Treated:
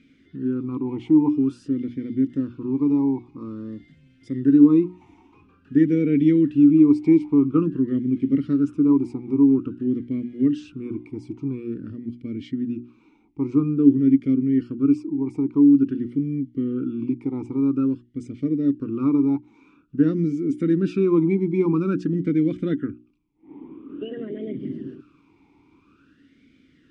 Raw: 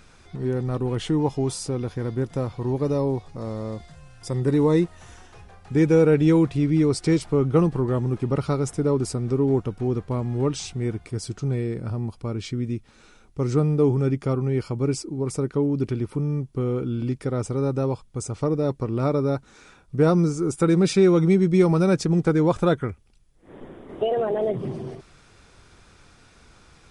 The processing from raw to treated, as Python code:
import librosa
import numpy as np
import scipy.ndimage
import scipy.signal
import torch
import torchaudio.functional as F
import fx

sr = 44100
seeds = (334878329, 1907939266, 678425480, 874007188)

y = fx.low_shelf(x, sr, hz=400.0, db=10.0)
y = fx.hum_notches(y, sr, base_hz=60, count=6)
y = fx.vowel_sweep(y, sr, vowels='i-u', hz=0.49)
y = y * 10.0 ** (5.5 / 20.0)